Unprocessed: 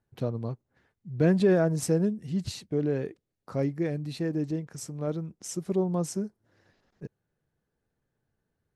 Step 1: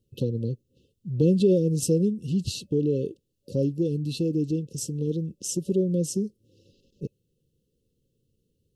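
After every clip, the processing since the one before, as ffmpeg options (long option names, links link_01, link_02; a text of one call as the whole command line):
ffmpeg -i in.wav -filter_complex "[0:a]afftfilt=real='re*(1-between(b*sr/4096,560,2600))':imag='im*(1-between(b*sr/4096,560,2600))':win_size=4096:overlap=0.75,asplit=2[link_01][link_02];[link_02]acompressor=threshold=-34dB:ratio=6,volume=3dB[link_03];[link_01][link_03]amix=inputs=2:normalize=0" out.wav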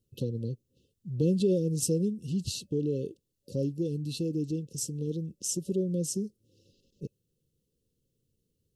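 ffmpeg -i in.wav -af "bass=frequency=250:gain=1,treble=frequency=4000:gain=6,volume=-6dB" out.wav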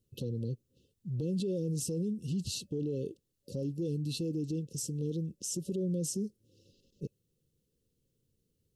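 ffmpeg -i in.wav -af "alimiter=level_in=3dB:limit=-24dB:level=0:latency=1:release=21,volume=-3dB" out.wav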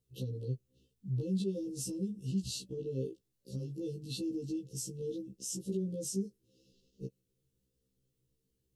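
ffmpeg -i in.wav -af "afftfilt=real='re*1.73*eq(mod(b,3),0)':imag='im*1.73*eq(mod(b,3),0)':win_size=2048:overlap=0.75" out.wav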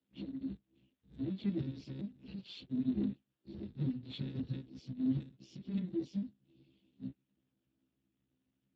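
ffmpeg -i in.wav -af "highpass=frequency=190:width_type=q:width=0.5412,highpass=frequency=190:width_type=q:width=1.307,lowpass=frequency=3500:width_type=q:width=0.5176,lowpass=frequency=3500:width_type=q:width=0.7071,lowpass=frequency=3500:width_type=q:width=1.932,afreqshift=-190,volume=7.5dB" -ar 32000 -c:a libspeex -b:a 8k out.spx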